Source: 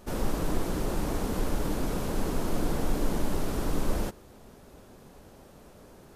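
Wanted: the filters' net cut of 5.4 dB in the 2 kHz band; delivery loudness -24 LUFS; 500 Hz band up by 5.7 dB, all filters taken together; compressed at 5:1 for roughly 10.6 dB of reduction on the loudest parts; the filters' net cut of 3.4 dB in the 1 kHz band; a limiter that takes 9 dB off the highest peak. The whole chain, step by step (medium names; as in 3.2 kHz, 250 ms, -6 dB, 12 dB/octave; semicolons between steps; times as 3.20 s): peaking EQ 500 Hz +9 dB; peaking EQ 1 kHz -7.5 dB; peaking EQ 2 kHz -5 dB; compression 5:1, threshold -32 dBFS; trim +19.5 dB; peak limiter -12 dBFS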